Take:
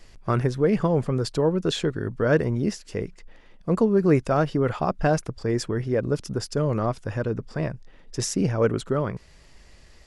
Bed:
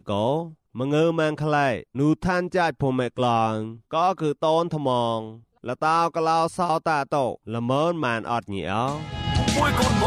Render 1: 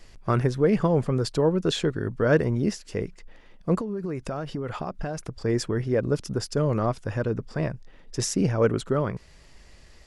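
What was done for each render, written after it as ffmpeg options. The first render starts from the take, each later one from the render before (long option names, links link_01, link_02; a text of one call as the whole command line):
ffmpeg -i in.wav -filter_complex "[0:a]asettb=1/sr,asplit=3[link_01][link_02][link_03];[link_01]atrim=end=3.784[link_04];[link_02]atrim=start=3.78:end=5.35,asetpts=PTS-STARTPTS,afade=type=in:duration=0.004:curve=qsin,afade=type=out:start_time=1.566:duration=0.004:curve=qsin,acompressor=threshold=-26dB:ratio=16:attack=3.2:release=140:knee=1:detection=peak[link_05];[link_03]atrim=start=5.346[link_06];[link_04][link_05]acrossfade=duration=0.004:curve1=hsin:curve2=qsin[link_07];[link_07][link_06]acrossfade=duration=0.004:curve1=qsin:curve2=hsin" out.wav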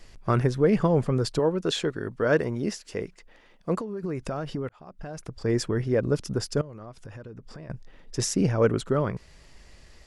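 ffmpeg -i in.wav -filter_complex "[0:a]asettb=1/sr,asplit=3[link_01][link_02][link_03];[link_01]atrim=end=1.394[link_04];[link_02]atrim=start=1.39:end=4.03,asetpts=PTS-STARTPTS,afade=type=in:duration=0.004:curve=qsin,afade=type=out:start_time=2.636:duration=0.004:curve=qsin,lowshelf=frequency=190:gain=-10[link_05];[link_03]atrim=start=4.026[link_06];[link_04][link_05]acrossfade=duration=0.004:curve1=hsin:curve2=qsin[link_07];[link_07][link_06]acrossfade=duration=0.004:curve1=qsin:curve2=hsin,asettb=1/sr,asplit=3[link_08][link_09][link_10];[link_08]atrim=end=6.614[link_11];[link_09]atrim=start=6.61:end=7.7,asetpts=PTS-STARTPTS,afade=type=in:duration=0.004:curve=qsin,afade=type=out:start_time=1.086:duration=0.004:curve=qsin,acompressor=threshold=-39dB:ratio=6:attack=3.2:release=140:knee=1:detection=peak[link_12];[link_10]atrim=start=7.696[link_13];[link_11][link_12]acrossfade=duration=0.004:curve1=hsin:curve2=qsin[link_14];[link_14][link_13]acrossfade=duration=0.004:curve1=qsin:curve2=hsin,asplit=2[link_15][link_16];[link_15]atrim=end=4.69,asetpts=PTS-STARTPTS,afade=type=out:start_time=4.686:duration=0.004:curve=hsin[link_17];[link_16]atrim=start=4.69,asetpts=PTS-STARTPTS,afade=type=in:duration=0.83[link_18];[link_17][link_18]concat=n=2:v=0:a=1" out.wav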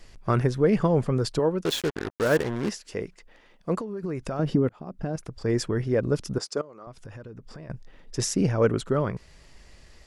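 ffmpeg -i in.wav -filter_complex "[0:a]asplit=3[link_01][link_02][link_03];[link_01]afade=type=out:start_time=1.63:duration=0.02[link_04];[link_02]acrusher=bits=4:mix=0:aa=0.5,afade=type=in:start_time=1.63:duration=0.02,afade=type=out:start_time=2.68:duration=0.02[link_05];[link_03]afade=type=in:start_time=2.68:duration=0.02[link_06];[link_04][link_05][link_06]amix=inputs=3:normalize=0,asettb=1/sr,asplit=3[link_07][link_08][link_09];[link_07]atrim=end=4.394[link_10];[link_08]atrim=start=4.39:end=5.16,asetpts=PTS-STARTPTS,afade=type=in:duration=0.004:curve=qsin,afade=type=out:start_time=0.766:duration=0.004:curve=qsin,equalizer=frequency=230:width=0.48:gain=11.5[link_11];[link_09]atrim=start=5.156[link_12];[link_10][link_11]acrossfade=duration=0.004:curve1=hsin:curve2=qsin[link_13];[link_13][link_12]acrossfade=duration=0.004:curve1=qsin:curve2=hsin,asettb=1/sr,asplit=3[link_14][link_15][link_16];[link_14]atrim=end=6.384[link_17];[link_15]atrim=start=6.38:end=6.87,asetpts=PTS-STARTPTS,afade=type=in:duration=0.004:curve=qsin,afade=type=out:start_time=0.486:duration=0.004:curve=qsin,highpass=330,equalizer=frequency=1200:width_type=q:width=4:gain=4,equalizer=frequency=1700:width_type=q:width=4:gain=-5,equalizer=frequency=2900:width_type=q:width=4:gain=-6,lowpass=frequency=9000:width=0.5412,lowpass=frequency=9000:width=1.3066[link_18];[link_16]atrim=start=6.866[link_19];[link_17][link_18]acrossfade=duration=0.004:curve1=hsin:curve2=qsin[link_20];[link_20][link_19]acrossfade=duration=0.004:curve1=qsin:curve2=hsin" out.wav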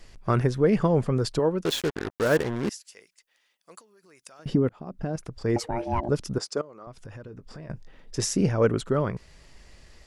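ffmpeg -i in.wav -filter_complex "[0:a]asettb=1/sr,asplit=3[link_01][link_02][link_03];[link_01]atrim=end=2.694[link_04];[link_02]atrim=start=2.69:end=4.46,asetpts=PTS-STARTPTS,afade=type=in:duration=0.004:curve=qsin,afade=type=out:start_time=1.766:duration=0.004:curve=qsin,aderivative[link_05];[link_03]atrim=start=4.456[link_06];[link_04][link_05]acrossfade=duration=0.004:curve1=hsin:curve2=qsin[link_07];[link_07][link_06]acrossfade=duration=0.004:curve1=qsin:curve2=hsin,asettb=1/sr,asplit=3[link_08][link_09][link_10];[link_08]atrim=end=5.564[link_11];[link_09]atrim=start=5.56:end=6.09,asetpts=PTS-STARTPTS,afade=type=in:duration=0.004:curve=qsin,afade=type=out:start_time=0.526:duration=0.004:curve=qsin,aeval=exprs='val(0)*sin(2*PI*470*n/s)':channel_layout=same[link_12];[link_10]atrim=start=6.086[link_13];[link_11][link_12]acrossfade=duration=0.004:curve1=hsin:curve2=qsin[link_14];[link_14][link_13]acrossfade=duration=0.004:curve1=qsin:curve2=hsin,asettb=1/sr,asplit=3[link_15][link_16][link_17];[link_15]atrim=end=7.254[link_18];[link_16]atrim=start=7.25:end=8.52,asetpts=PTS-STARTPTS,afade=type=in:duration=0.004:curve=qsin,afade=type=out:start_time=1.266:duration=0.004:curve=qsin,asplit=2[link_19][link_20];[link_20]adelay=20,volume=-11.5dB[link_21];[link_19][link_21]amix=inputs=2:normalize=0,atrim=end_sample=56007[link_22];[link_17]atrim=start=8.516[link_23];[link_18][link_22]acrossfade=duration=0.004:curve1=hsin:curve2=qsin[link_24];[link_24][link_23]acrossfade=duration=0.004:curve1=qsin:curve2=hsin" out.wav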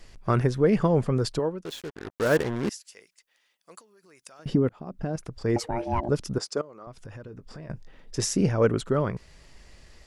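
ffmpeg -i in.wav -filter_complex "[0:a]asplit=3[link_01][link_02][link_03];[link_01]atrim=end=1.61,asetpts=PTS-STARTPTS,afade=type=out:start_time=1.29:duration=0.32:silence=0.298538[link_04];[link_02]atrim=start=1.61:end=1.96,asetpts=PTS-STARTPTS,volume=-10.5dB[link_05];[link_03]atrim=start=1.96,asetpts=PTS-STARTPTS,afade=type=in:duration=0.32:silence=0.298538[link_06];[link_04][link_05][link_06]concat=n=3:v=0:a=1" out.wav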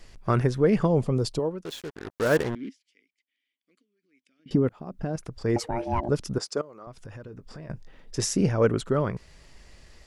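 ffmpeg -i in.wav -filter_complex "[0:a]asettb=1/sr,asplit=3[link_01][link_02][link_03];[link_01]atrim=end=0.854[link_04];[link_02]atrim=start=0.85:end=1.51,asetpts=PTS-STARTPTS,afade=type=in:duration=0.004:curve=qsin,afade=type=out:start_time=0.656:duration=0.004:curve=qsin,equalizer=frequency=1600:width=1.8:gain=-11.5[link_05];[link_03]atrim=start=1.506[link_06];[link_04][link_05]acrossfade=duration=0.004:curve1=hsin:curve2=qsin[link_07];[link_07][link_06]acrossfade=duration=0.004:curve1=qsin:curve2=hsin,asettb=1/sr,asplit=3[link_08][link_09][link_10];[link_08]atrim=end=2.554[link_11];[link_09]atrim=start=2.55:end=4.51,asetpts=PTS-STARTPTS,afade=type=in:duration=0.004:curve=qsin,afade=type=out:start_time=1.956:duration=0.004:curve=qsin,asplit=3[link_12][link_13][link_14];[link_12]bandpass=frequency=270:width_type=q:width=8,volume=0dB[link_15];[link_13]bandpass=frequency=2290:width_type=q:width=8,volume=-6dB[link_16];[link_14]bandpass=frequency=3010:width_type=q:width=8,volume=-9dB[link_17];[link_15][link_16][link_17]amix=inputs=3:normalize=0[link_18];[link_10]atrim=start=4.506[link_19];[link_11][link_18]acrossfade=duration=0.004:curve1=hsin:curve2=qsin[link_20];[link_20][link_19]acrossfade=duration=0.004:curve1=qsin:curve2=hsin" out.wav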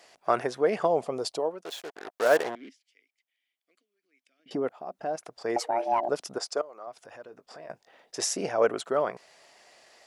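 ffmpeg -i in.wav -af "highpass=480,equalizer=frequency=700:width_type=o:width=0.47:gain=9.5" out.wav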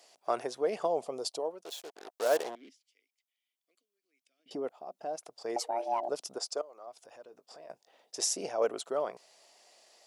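ffmpeg -i in.wav -af "highpass=frequency=640:poles=1,equalizer=frequency=1700:width_type=o:width=1.5:gain=-11" out.wav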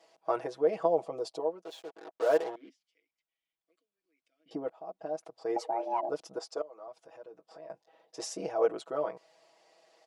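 ffmpeg -i in.wav -af "lowpass=frequency=1400:poles=1,aecho=1:1:6.2:0.96" out.wav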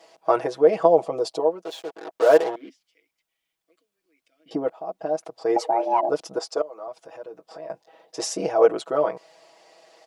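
ffmpeg -i in.wav -af "volume=10.5dB" out.wav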